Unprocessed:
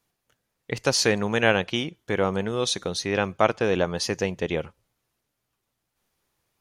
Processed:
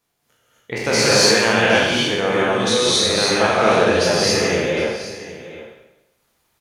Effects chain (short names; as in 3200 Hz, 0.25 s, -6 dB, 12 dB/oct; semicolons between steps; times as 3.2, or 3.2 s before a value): spectral trails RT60 0.96 s; low shelf 120 Hz -6 dB; echo 0.764 s -15.5 dB; in parallel at 0 dB: limiter -11 dBFS, peak gain reduction 8.5 dB; on the sum: non-linear reverb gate 0.29 s rising, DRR -6 dB; gain -6 dB